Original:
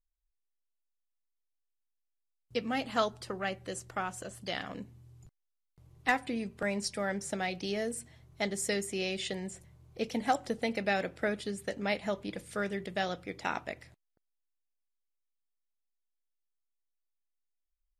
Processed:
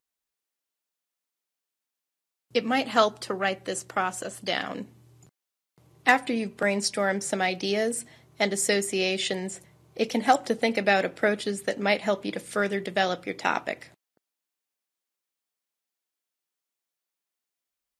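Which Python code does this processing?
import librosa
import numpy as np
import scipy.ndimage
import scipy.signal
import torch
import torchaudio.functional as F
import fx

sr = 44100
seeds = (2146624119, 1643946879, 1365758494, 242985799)

y = scipy.signal.sosfilt(scipy.signal.butter(2, 200.0, 'highpass', fs=sr, output='sos'), x)
y = y * 10.0 ** (8.5 / 20.0)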